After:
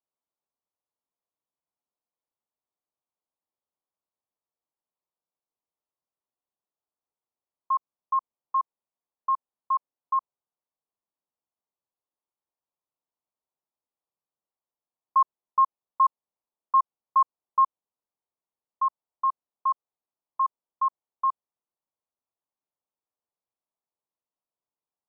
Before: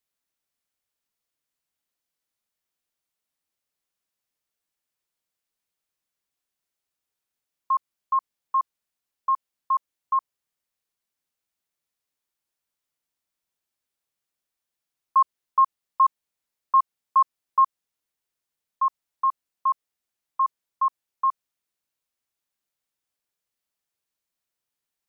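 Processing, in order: steep low-pass 1100 Hz 36 dB/oct; tilt +2.5 dB/oct

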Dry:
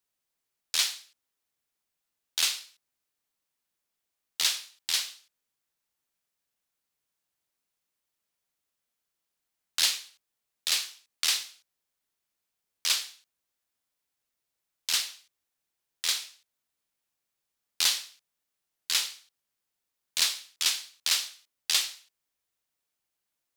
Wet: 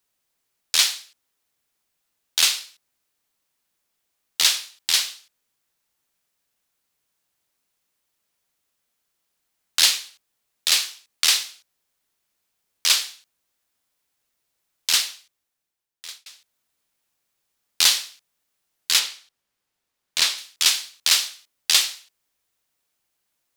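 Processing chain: 14.9–16.26 fade out; 18.99–20.38 high shelf 6500 Hz -8 dB; gain +8 dB

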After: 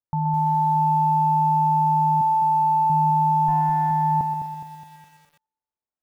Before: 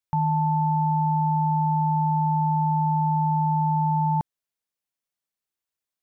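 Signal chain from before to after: 3.48–3.91 minimum comb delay 0.9 ms; LPF 1000 Hz 12 dB/oct; de-hum 213.1 Hz, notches 2; 2.21–2.9 resonant low shelf 270 Hz -6.5 dB, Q 3; thinning echo 0.125 s, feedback 59%, high-pass 550 Hz, level -6 dB; lo-fi delay 0.208 s, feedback 55%, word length 8-bit, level -8.5 dB

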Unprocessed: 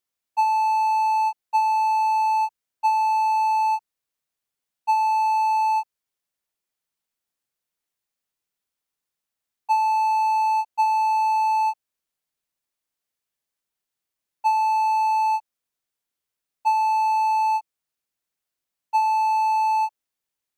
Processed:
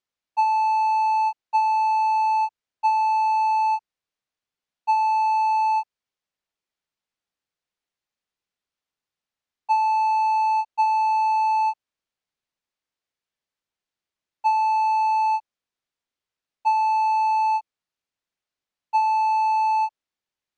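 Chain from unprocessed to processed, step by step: LPF 5300 Hz 12 dB/oct

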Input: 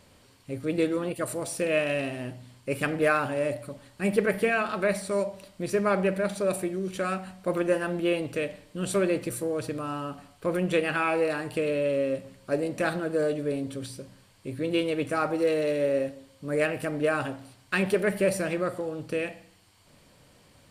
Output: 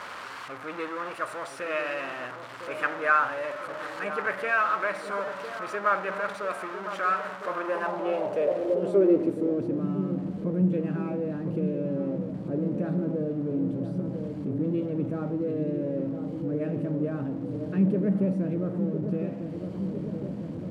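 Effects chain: zero-crossing step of -27 dBFS; dark delay 1.006 s, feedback 68%, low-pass 910 Hz, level -7 dB; band-pass sweep 1300 Hz -> 200 Hz, 7.45–9.97; gain +4.5 dB

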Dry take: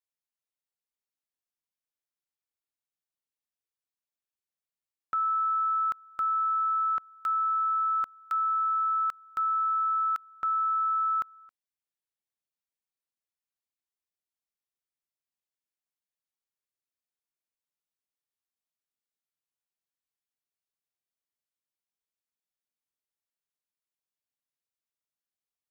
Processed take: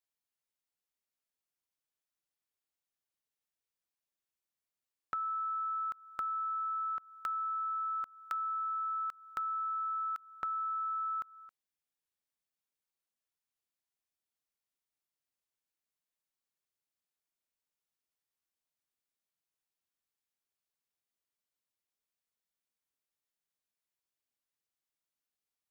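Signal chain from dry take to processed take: compressor, threshold -35 dBFS, peak gain reduction 8.5 dB

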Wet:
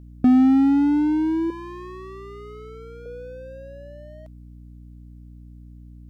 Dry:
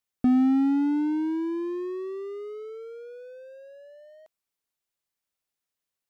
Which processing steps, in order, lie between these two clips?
1.5–3.06 resonant low shelf 490 Hz -11.5 dB, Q 1.5; hum 60 Hz, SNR 19 dB; gain +5.5 dB

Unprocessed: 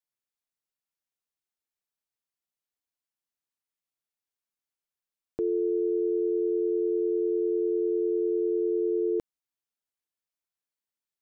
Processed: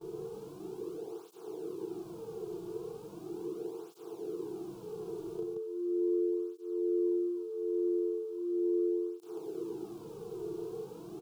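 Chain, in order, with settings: per-bin compression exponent 0.2; in parallel at +1 dB: negative-ratio compressor -34 dBFS, ratio -0.5; on the sum: gate with hold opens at -26 dBFS; fixed phaser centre 380 Hz, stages 8; on a send: loudspeakers at several distances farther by 12 m -1 dB, 60 m -2 dB; on the sum: tape flanging out of phase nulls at 0.38 Hz, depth 4 ms; gain -8 dB

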